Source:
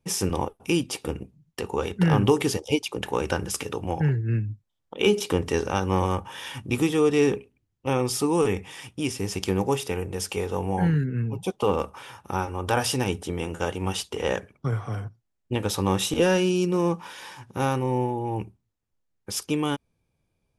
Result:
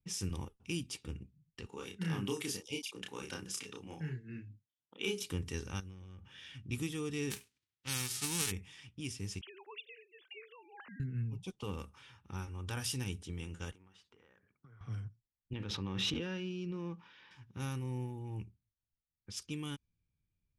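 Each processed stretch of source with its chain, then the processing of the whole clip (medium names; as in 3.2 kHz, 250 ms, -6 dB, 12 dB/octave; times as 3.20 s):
1.66–5.23 s: high-pass 220 Hz + doubling 31 ms -3.5 dB
5.80–6.65 s: compression 10:1, threshold -32 dBFS + peaking EQ 970 Hz -9.5 dB 0.51 oct
7.30–8.50 s: formants flattened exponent 0.3 + high-pass 150 Hz 6 dB/octave
9.41–11.00 s: formants replaced by sine waves + high-pass 1.5 kHz 6 dB/octave
13.71–14.81 s: high-pass 420 Hz 6 dB/octave + resonant high shelf 2.1 kHz -7 dB, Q 1.5 + compression 12:1, threshold -42 dBFS
15.53–17.31 s: high-pass 190 Hz 6 dB/octave + distance through air 260 m + swell ahead of each attack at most 20 dB/s
whole clip: level-controlled noise filter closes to 3 kHz, open at -21 dBFS; amplifier tone stack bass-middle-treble 6-0-2; trim +5 dB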